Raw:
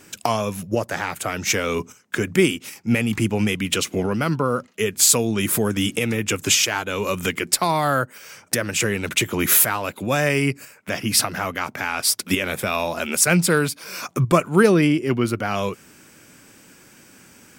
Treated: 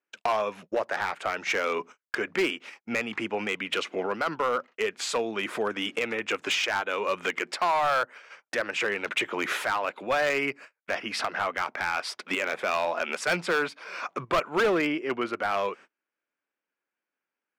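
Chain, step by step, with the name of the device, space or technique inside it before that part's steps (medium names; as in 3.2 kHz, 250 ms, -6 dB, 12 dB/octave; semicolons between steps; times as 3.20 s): walkie-talkie (band-pass 530–2400 Hz; hard clipper -19.5 dBFS, distortion -11 dB; gate -45 dBFS, range -34 dB)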